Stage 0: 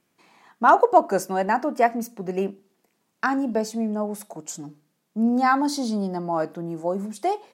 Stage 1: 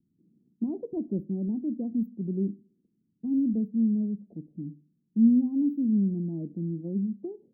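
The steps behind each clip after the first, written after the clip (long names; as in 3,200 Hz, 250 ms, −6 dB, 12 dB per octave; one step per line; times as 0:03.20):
inverse Chebyshev band-stop filter 1,500–8,800 Hz, stop band 80 dB
low-pass that shuts in the quiet parts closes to 310 Hz, open at −26.5 dBFS
dynamic equaliser 710 Hz, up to −7 dB, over −46 dBFS, Q 0.71
level +4 dB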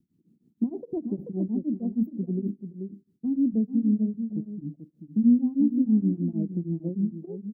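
single-tap delay 435 ms −9 dB
tremolo along a rectified sine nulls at 6.4 Hz
level +4.5 dB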